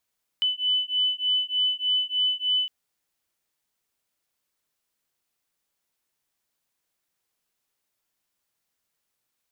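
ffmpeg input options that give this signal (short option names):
-f lavfi -i "aevalsrc='0.0562*(sin(2*PI*3000*t)+sin(2*PI*3003.3*t))':d=2.26:s=44100"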